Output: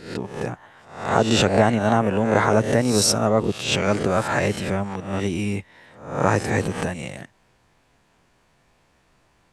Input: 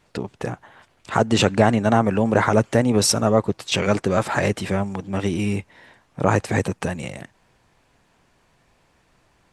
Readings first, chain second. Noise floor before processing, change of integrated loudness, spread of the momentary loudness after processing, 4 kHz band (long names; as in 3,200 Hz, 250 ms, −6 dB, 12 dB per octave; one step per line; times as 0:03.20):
−62 dBFS, −0.5 dB, 14 LU, +1.0 dB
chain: peak hold with a rise ahead of every peak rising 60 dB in 0.56 s
level −2.5 dB